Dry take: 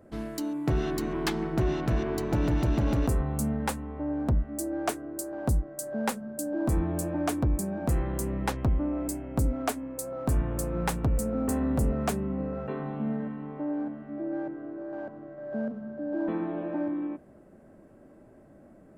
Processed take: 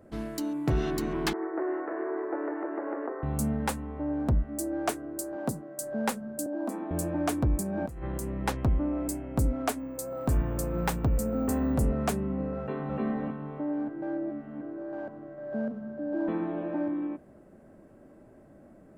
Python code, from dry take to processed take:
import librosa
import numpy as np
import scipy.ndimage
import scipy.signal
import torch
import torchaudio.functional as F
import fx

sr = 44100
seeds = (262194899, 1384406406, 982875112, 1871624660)

y = fx.cheby1_bandpass(x, sr, low_hz=320.0, high_hz=1900.0, order=4, at=(1.33, 3.23))
y = fx.highpass(y, sr, hz=150.0, slope=24, at=(5.36, 5.81))
y = fx.cheby_ripple_highpass(y, sr, hz=190.0, ripple_db=6, at=(6.46, 6.91))
y = fx.over_compress(y, sr, threshold_db=-34.0, ratio=-1.0, at=(7.63, 8.46))
y = fx.resample_bad(y, sr, factor=2, down='filtered', up='hold', at=(9.79, 11.74))
y = fx.echo_throw(y, sr, start_s=12.59, length_s=0.41, ms=300, feedback_pct=25, wet_db=-0.5)
y = fx.edit(y, sr, fx.reverse_span(start_s=13.89, length_s=0.72), tone=tone)